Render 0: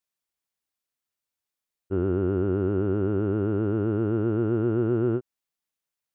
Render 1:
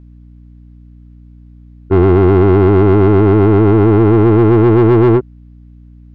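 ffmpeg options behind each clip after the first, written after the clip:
ffmpeg -i in.wav -filter_complex "[0:a]aemphasis=mode=reproduction:type=riaa,asplit=2[link_01][link_02];[link_02]highpass=frequency=720:poles=1,volume=24dB,asoftclip=type=tanh:threshold=-8dB[link_03];[link_01][link_03]amix=inputs=2:normalize=0,lowpass=frequency=2500:poles=1,volume=-6dB,aeval=exprs='val(0)+0.00708*(sin(2*PI*60*n/s)+sin(2*PI*2*60*n/s)/2+sin(2*PI*3*60*n/s)/3+sin(2*PI*4*60*n/s)/4+sin(2*PI*5*60*n/s)/5)':channel_layout=same,volume=6dB" out.wav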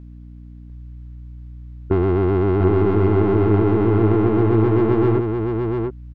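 ffmpeg -i in.wav -af "acompressor=threshold=-16dB:ratio=6,aecho=1:1:698:0.596" out.wav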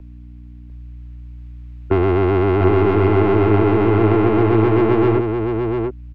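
ffmpeg -i in.wav -filter_complex "[0:a]equalizer=frequency=160:width_type=o:width=0.67:gain=-7,equalizer=frequency=630:width_type=o:width=0.67:gain=4,equalizer=frequency=2500:width_type=o:width=0.67:gain=6,acrossover=split=230|500|820[link_01][link_02][link_03][link_04];[link_04]dynaudnorm=framelen=310:gausssize=9:maxgain=3dB[link_05];[link_01][link_02][link_03][link_05]amix=inputs=4:normalize=0,volume=2dB" out.wav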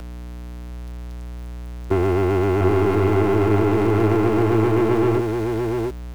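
ffmpeg -i in.wav -af "aeval=exprs='val(0)+0.5*0.0447*sgn(val(0))':channel_layout=same,volume=-4dB" out.wav

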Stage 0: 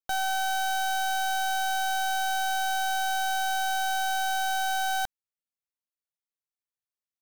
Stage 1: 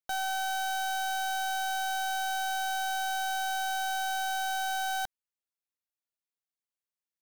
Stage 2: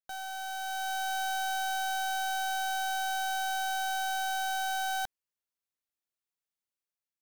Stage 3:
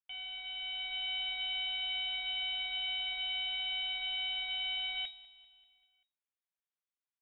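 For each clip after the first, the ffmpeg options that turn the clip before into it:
ffmpeg -i in.wav -af "lowshelf=frequency=180:gain=-4.5,volume=-3.5dB" out.wav
ffmpeg -i in.wav -af "dynaudnorm=framelen=300:gausssize=5:maxgain=7dB,volume=-7.5dB" out.wav
ffmpeg -i in.wav -af "aecho=1:1:195|390|585|780|975:0.106|0.0593|0.0332|0.0186|0.0104,flanger=delay=6:depth=5:regen=-68:speed=0.28:shape=triangular,lowpass=frequency=3200:width_type=q:width=0.5098,lowpass=frequency=3200:width_type=q:width=0.6013,lowpass=frequency=3200:width_type=q:width=0.9,lowpass=frequency=3200:width_type=q:width=2.563,afreqshift=-3800" out.wav

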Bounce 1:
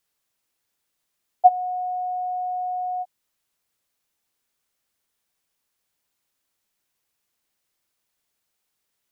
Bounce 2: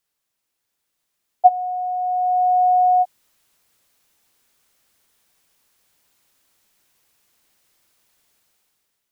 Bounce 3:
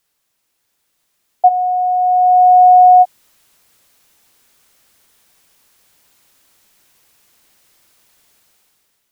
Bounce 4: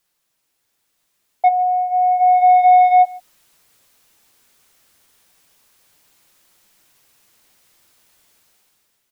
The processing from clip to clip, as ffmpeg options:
ffmpeg -i in.wav -af "dynaudnorm=framelen=220:gausssize=7:maxgain=13.5dB,volume=-1dB" out.wav
ffmpeg -i in.wav -af "alimiter=level_in=10dB:limit=-1dB:release=50:level=0:latency=1,volume=-1dB" out.wav
ffmpeg -i in.wav -af "asoftclip=type=tanh:threshold=-4.5dB,flanger=delay=5.5:depth=6.6:regen=-47:speed=0.31:shape=sinusoidal,aecho=1:1:147:0.075,volume=2dB" out.wav

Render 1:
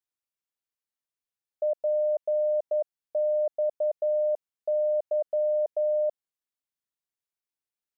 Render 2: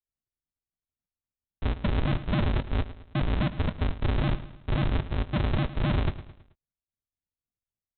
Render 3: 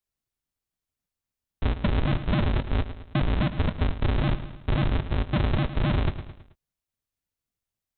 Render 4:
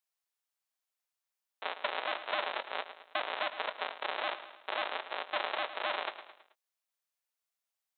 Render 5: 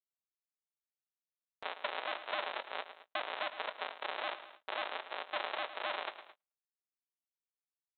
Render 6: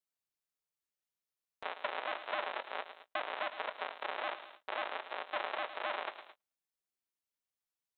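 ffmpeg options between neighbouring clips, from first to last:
ffmpeg -i in.wav -filter_complex "[0:a]aresample=8000,acrusher=samples=33:mix=1:aa=0.000001:lfo=1:lforange=33:lforate=3.7,aresample=44100,asplit=2[link_01][link_02];[link_02]adelay=22,volume=-14dB[link_03];[link_01][link_03]amix=inputs=2:normalize=0,aecho=1:1:108|216|324|432:0.188|0.0848|0.0381|0.0172" out.wav
ffmpeg -i in.wav -af "acompressor=threshold=-26dB:ratio=6,volume=5.5dB" out.wav
ffmpeg -i in.wav -af "highpass=frequency=600:width=0.5412,highpass=frequency=600:width=1.3066" out.wav
ffmpeg -i in.wav -af "agate=range=-33dB:threshold=-52dB:ratio=16:detection=peak,volume=-3.5dB" out.wav
ffmpeg -i in.wav -filter_complex "[0:a]acrossover=split=3100[link_01][link_02];[link_02]acompressor=threshold=-54dB:ratio=4:attack=1:release=60[link_03];[link_01][link_03]amix=inputs=2:normalize=0,volume=1dB" out.wav

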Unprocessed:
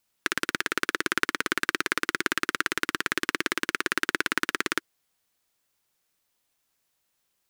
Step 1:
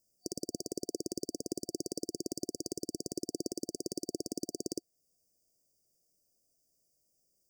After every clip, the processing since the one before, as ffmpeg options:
ffmpeg -i in.wav -af "afftfilt=real='re*(1-between(b*sr/4096,720,4600))':imag='im*(1-between(b*sr/4096,720,4600))':win_size=4096:overlap=0.75,equalizer=frequency=12000:width=3.4:gain=-11.5,alimiter=limit=-19dB:level=0:latency=1:release=312,volume=1.5dB" out.wav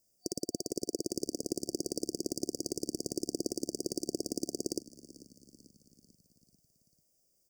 ffmpeg -i in.wav -filter_complex "[0:a]asplit=6[link_01][link_02][link_03][link_04][link_05][link_06];[link_02]adelay=442,afreqshift=-36,volume=-18dB[link_07];[link_03]adelay=884,afreqshift=-72,volume=-23.2dB[link_08];[link_04]adelay=1326,afreqshift=-108,volume=-28.4dB[link_09];[link_05]adelay=1768,afreqshift=-144,volume=-33.6dB[link_10];[link_06]adelay=2210,afreqshift=-180,volume=-38.8dB[link_11];[link_01][link_07][link_08][link_09][link_10][link_11]amix=inputs=6:normalize=0,volume=2.5dB" out.wav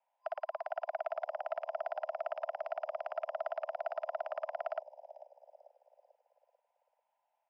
ffmpeg -i in.wav -af "asoftclip=type=tanh:threshold=-31dB,highpass=frequency=300:width_type=q:width=0.5412,highpass=frequency=300:width_type=q:width=1.307,lowpass=frequency=2600:width_type=q:width=0.5176,lowpass=frequency=2600:width_type=q:width=0.7071,lowpass=frequency=2600:width_type=q:width=1.932,afreqshift=310,volume=6dB" out.wav

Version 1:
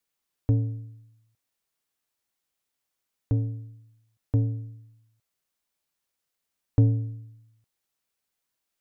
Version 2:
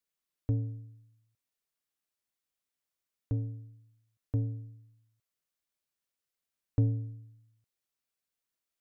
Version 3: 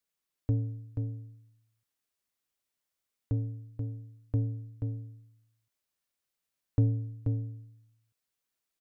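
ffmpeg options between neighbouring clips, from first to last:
ffmpeg -i in.wav -af "equalizer=frequency=850:width_type=o:width=0.38:gain=-3.5,volume=-7dB" out.wav
ffmpeg -i in.wav -af "aecho=1:1:482:0.531,volume=1.5dB" out.wav

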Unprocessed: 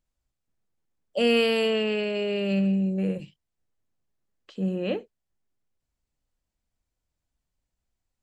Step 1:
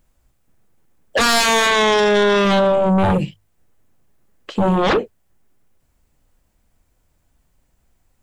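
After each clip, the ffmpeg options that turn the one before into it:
ffmpeg -i in.wav -af "equalizer=frequency=4500:width_type=o:width=1.6:gain=-6.5,bandreject=frequency=50:width_type=h:width=6,bandreject=frequency=100:width_type=h:width=6,aeval=exprs='0.251*sin(PI/2*6.31*val(0)/0.251)':channel_layout=same" out.wav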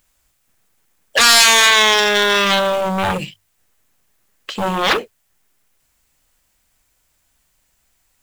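ffmpeg -i in.wav -filter_complex "[0:a]tiltshelf=frequency=930:gain=-8.5,asplit=2[link_01][link_02];[link_02]acrusher=bits=2:mode=log:mix=0:aa=0.000001,volume=-8dB[link_03];[link_01][link_03]amix=inputs=2:normalize=0,volume=-2.5dB" out.wav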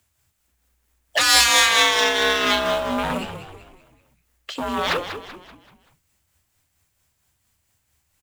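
ffmpeg -i in.wav -filter_complex "[0:a]tremolo=f=4.4:d=0.42,afreqshift=60,asplit=2[link_01][link_02];[link_02]asplit=5[link_03][link_04][link_05][link_06][link_07];[link_03]adelay=192,afreqshift=-75,volume=-10dB[link_08];[link_04]adelay=384,afreqshift=-150,volume=-17.1dB[link_09];[link_05]adelay=576,afreqshift=-225,volume=-24.3dB[link_10];[link_06]adelay=768,afreqshift=-300,volume=-31.4dB[link_11];[link_07]adelay=960,afreqshift=-375,volume=-38.5dB[link_12];[link_08][link_09][link_10][link_11][link_12]amix=inputs=5:normalize=0[link_13];[link_01][link_13]amix=inputs=2:normalize=0,volume=-3.5dB" out.wav

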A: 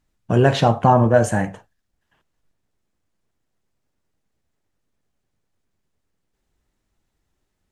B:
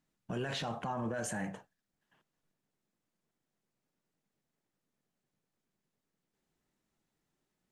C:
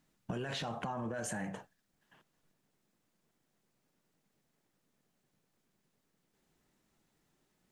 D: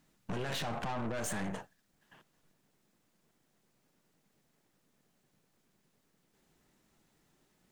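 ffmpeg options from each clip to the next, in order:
ffmpeg -i in.wav -filter_complex "[0:a]lowshelf=frequency=110:width_type=q:width=1.5:gain=-11,acrossover=split=1300[link_01][link_02];[link_01]acompressor=threshold=-22dB:ratio=6[link_03];[link_03][link_02]amix=inputs=2:normalize=0,alimiter=limit=-21.5dB:level=0:latency=1:release=21,volume=-7dB" out.wav
ffmpeg -i in.wav -af "acompressor=threshold=-42dB:ratio=12,volume=7dB" out.wav
ffmpeg -i in.wav -af "aeval=exprs='(tanh(141*val(0)+0.75)-tanh(0.75))/141':channel_layout=same,volume=9dB" out.wav

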